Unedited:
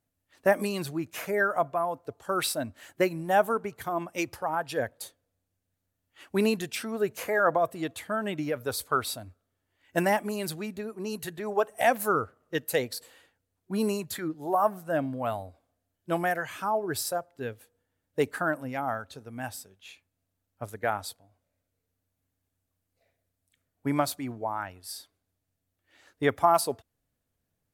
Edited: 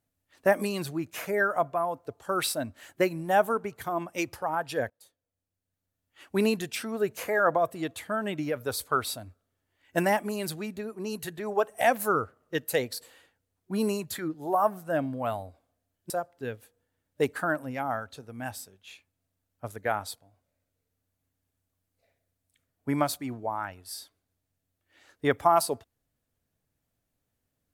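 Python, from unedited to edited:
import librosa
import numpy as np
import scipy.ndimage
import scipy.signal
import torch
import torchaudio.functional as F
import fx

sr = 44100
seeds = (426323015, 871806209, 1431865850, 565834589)

y = fx.edit(x, sr, fx.fade_in_from(start_s=4.9, length_s=1.51, floor_db=-22.0),
    fx.cut(start_s=16.1, length_s=0.98), tone=tone)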